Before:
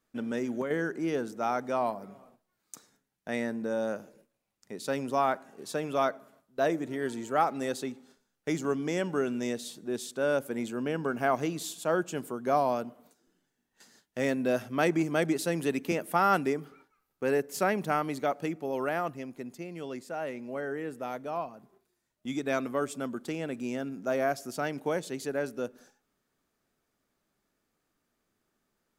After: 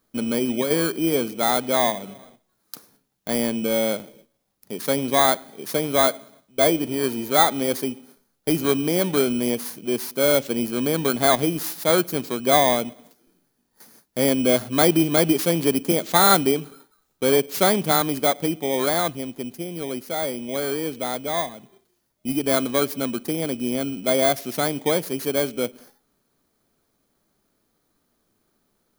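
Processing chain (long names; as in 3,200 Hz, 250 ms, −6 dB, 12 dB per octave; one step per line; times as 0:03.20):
samples in bit-reversed order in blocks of 16 samples
level +9 dB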